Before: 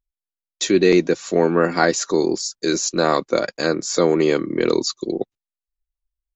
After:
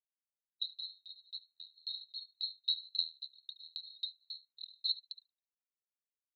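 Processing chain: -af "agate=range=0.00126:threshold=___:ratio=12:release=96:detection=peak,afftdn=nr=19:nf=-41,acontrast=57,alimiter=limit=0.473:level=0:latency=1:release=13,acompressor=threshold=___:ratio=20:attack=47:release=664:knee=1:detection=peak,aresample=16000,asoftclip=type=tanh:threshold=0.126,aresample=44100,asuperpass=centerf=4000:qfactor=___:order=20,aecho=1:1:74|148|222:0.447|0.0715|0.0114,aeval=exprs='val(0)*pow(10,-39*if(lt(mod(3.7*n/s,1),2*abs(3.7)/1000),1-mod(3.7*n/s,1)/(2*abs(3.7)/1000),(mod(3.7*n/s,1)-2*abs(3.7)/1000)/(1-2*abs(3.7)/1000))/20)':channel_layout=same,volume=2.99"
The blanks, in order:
0.0141, 0.158, 6.8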